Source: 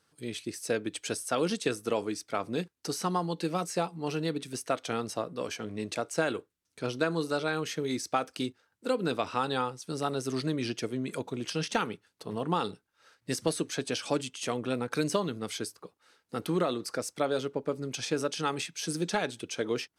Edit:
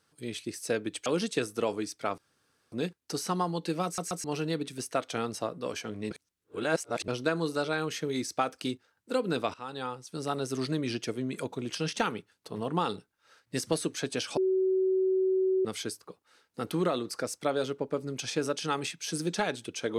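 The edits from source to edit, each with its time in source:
1.06–1.35 cut
2.47 insert room tone 0.54 s
3.6 stutter in place 0.13 s, 3 plays
5.86–6.83 reverse
9.29–10.37 fade in equal-power, from -16 dB
14.12–15.4 bleep 377 Hz -23 dBFS

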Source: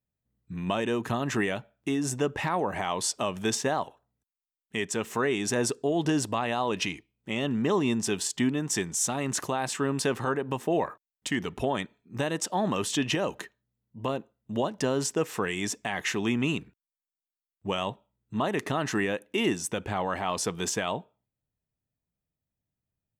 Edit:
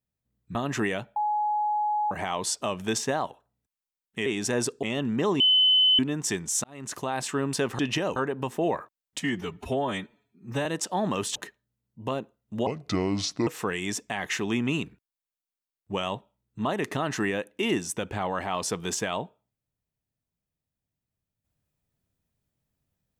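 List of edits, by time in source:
0.55–1.12 cut
1.73–2.68 bleep 841 Hz -23 dBFS
4.83–5.29 cut
5.86–7.29 cut
7.86–8.45 bleep 3030 Hz -16.5 dBFS
9.1–9.6 fade in
11.29–12.26 stretch 1.5×
12.96–13.33 move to 10.25
14.64–15.22 speed 72%

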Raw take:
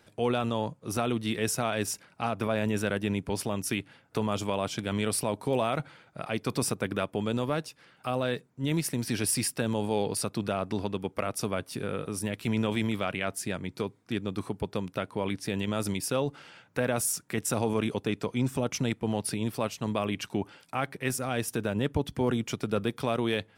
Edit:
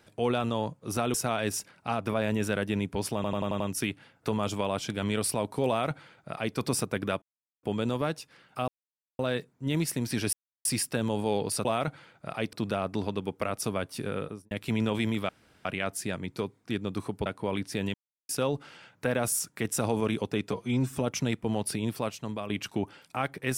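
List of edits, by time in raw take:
1.14–1.48 cut
3.49 stutter 0.09 s, 6 plays
5.57–6.45 copy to 10.3
7.11 insert silence 0.41 s
8.16 insert silence 0.51 s
9.3 insert silence 0.32 s
11.96–12.28 studio fade out
13.06 insert room tone 0.36 s
14.67–14.99 cut
15.67–16.02 mute
18.25–18.54 stretch 1.5×
19.48–20.08 fade out, to -8 dB

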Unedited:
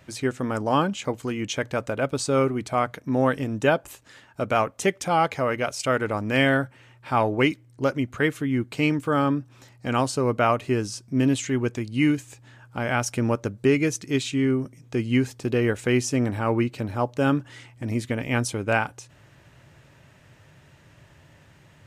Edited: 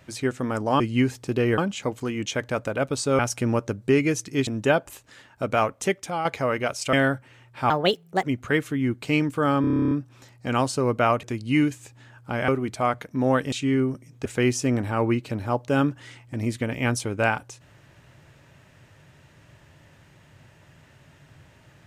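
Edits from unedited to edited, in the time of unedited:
2.41–3.45 swap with 12.95–14.23
4.77–5.23 fade out, to -9 dB
5.91–6.42 cut
7.19–7.93 speed 139%
9.31 stutter 0.03 s, 11 plays
10.63–11.7 cut
14.96–15.74 move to 0.8

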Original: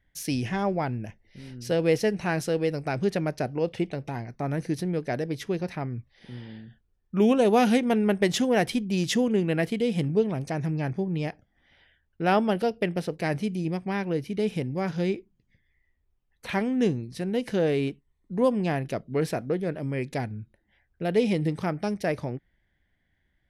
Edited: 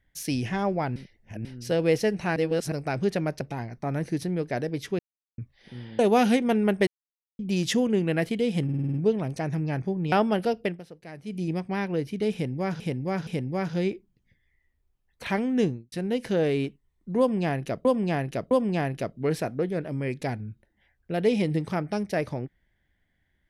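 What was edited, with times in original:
0.96–1.45 reverse
2.36–2.72 reverse
3.41–3.98 cut
5.56–5.95 mute
6.56–7.4 cut
8.28–8.8 mute
10.05 stutter 0.05 s, 7 plays
11.23–12.29 cut
12.8–13.58 dip -15 dB, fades 0.18 s
14.5–14.97 loop, 3 plays
16.87–17.15 studio fade out
18.42–19.08 loop, 3 plays

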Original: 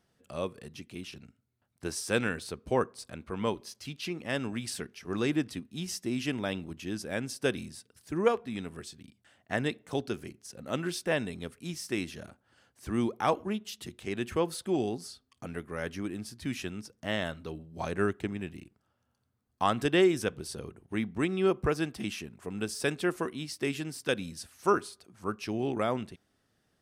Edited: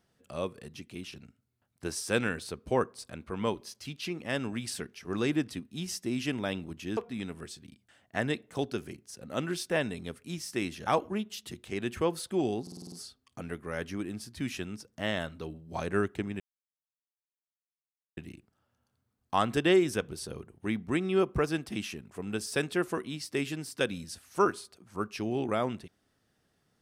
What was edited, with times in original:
6.97–8.33 cut
12.23–13.22 cut
14.97 stutter 0.05 s, 7 plays
18.45 insert silence 1.77 s

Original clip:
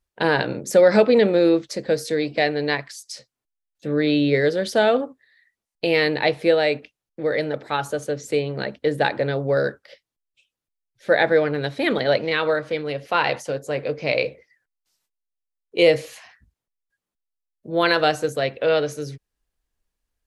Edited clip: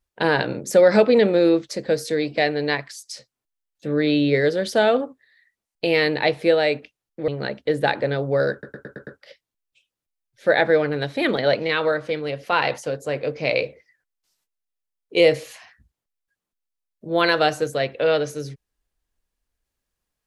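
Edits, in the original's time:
7.28–8.45 cut
9.69 stutter 0.11 s, 6 plays

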